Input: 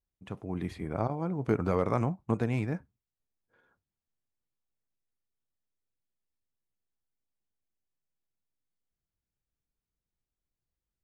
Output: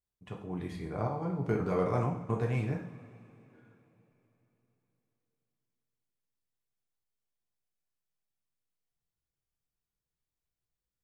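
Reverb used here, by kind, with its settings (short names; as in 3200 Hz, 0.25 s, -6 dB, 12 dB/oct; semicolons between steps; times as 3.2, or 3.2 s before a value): two-slope reverb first 0.55 s, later 3.7 s, from -20 dB, DRR -0.5 dB; gain -5 dB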